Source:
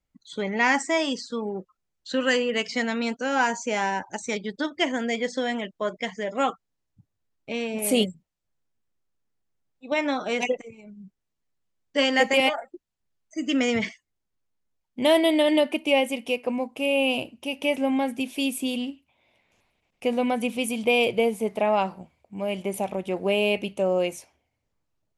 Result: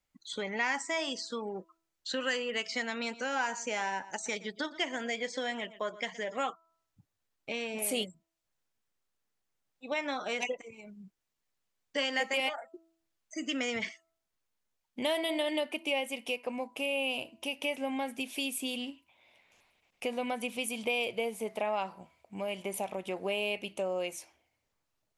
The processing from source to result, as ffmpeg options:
-filter_complex "[0:a]asettb=1/sr,asplit=3[s0][s1][s2];[s0]atrim=end=2.934[s3];[s1]atrim=start=2.93:end=6.41,asetpts=PTS-STARTPTS,afade=t=in:d=0.004:c=qsin,afade=t=out:st=3.476:d=0.004:c=qsin,aecho=1:1:118:0.106,atrim=end_sample=153468[s4];[s2]atrim=start=6.406[s5];[s3][s4]acrossfade=d=0.004:c1=hsin:c2=qsin[s6];[s6][s5]acrossfade=d=0.004:c1=qsin:c2=hsin,lowshelf=f=440:g=-10.5,bandreject=f=329.3:t=h:w=4,bandreject=f=658.6:t=h:w=4,bandreject=f=987.9:t=h:w=4,bandreject=f=1317.2:t=h:w=4,acompressor=threshold=0.01:ratio=2,volume=1.41"

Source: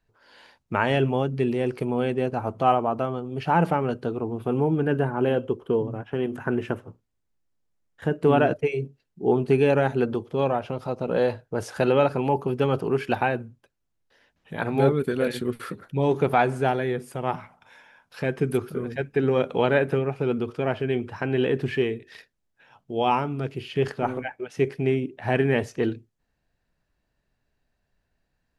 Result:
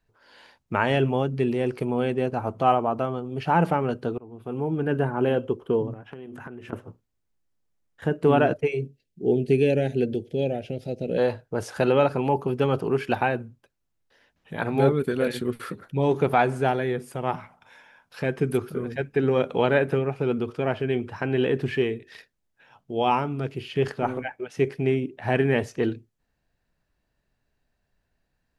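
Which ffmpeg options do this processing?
-filter_complex "[0:a]asettb=1/sr,asplit=3[s0][s1][s2];[s0]atrim=end=5.934[s3];[s1]atrim=start=5.93:end=6.73,asetpts=PTS-STARTPTS,afade=t=in:d=0.004:c=qsin,afade=t=out:st=0.796:d=0.004:c=qsin,acompressor=threshold=0.0178:ratio=16:attack=3.2:release=140:knee=1:detection=peak[s4];[s2]atrim=start=6.726[s5];[s3][s4]acrossfade=d=0.004:c1=hsin:c2=qsin[s6];[s6][s5]acrossfade=d=0.004:c1=qsin:c2=hsin,asplit=3[s7][s8][s9];[s7]afade=t=out:st=8.84:d=0.02[s10];[s8]asuperstop=centerf=1100:order=4:qfactor=0.73,afade=t=in:st=8.84:d=0.02,afade=t=out:st=11.17:d=0.02[s11];[s9]afade=t=in:st=11.17:d=0.02[s12];[s10][s11][s12]amix=inputs=3:normalize=0,asplit=2[s13][s14];[s13]atrim=end=4.18,asetpts=PTS-STARTPTS,afade=t=out:st=4.176:d=0.004:c=hsin:silence=0.0891251[s15];[s14]atrim=start=4.18,asetpts=PTS-STARTPTS,afade=t=in:d=0.86:silence=0.0891251[s16];[s15][s16]concat=n=2:v=0:a=1"

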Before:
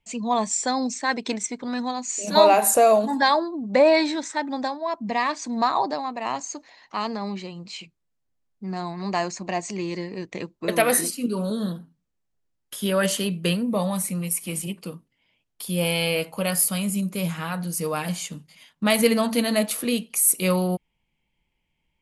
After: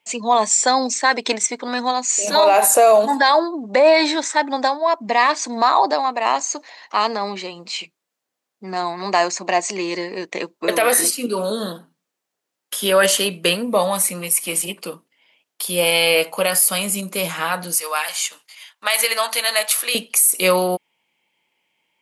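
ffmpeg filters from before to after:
-filter_complex "[0:a]asettb=1/sr,asplit=3[s0][s1][s2];[s0]atrim=end=17.764[s3];[s1]atrim=start=17.76:end=19.95,asetpts=PTS-STARTPTS,afade=t=in:d=0.004:c=qsin,afade=t=out:st=2.186:d=0.004:c=qsin,highpass=980[s4];[s2]atrim=start=19.946[s5];[s3][s4]acrossfade=d=0.004:c1=hsin:c2=qsin[s6];[s6][s5]acrossfade=d=0.004:c1=qsin:c2=hsin,highpass=420,alimiter=level_in=5.01:limit=0.891:release=50:level=0:latency=1,volume=0.631"

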